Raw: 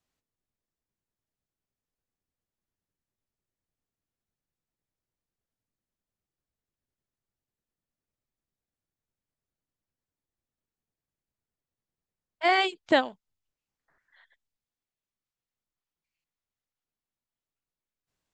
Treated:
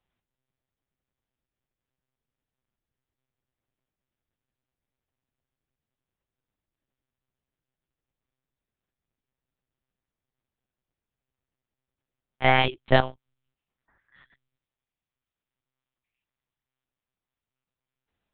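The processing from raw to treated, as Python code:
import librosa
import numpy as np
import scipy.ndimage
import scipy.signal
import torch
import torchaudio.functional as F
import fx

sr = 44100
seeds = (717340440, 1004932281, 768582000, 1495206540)

y = fx.lpc_monotone(x, sr, seeds[0], pitch_hz=130.0, order=8)
y = y * librosa.db_to_amplitude(3.5)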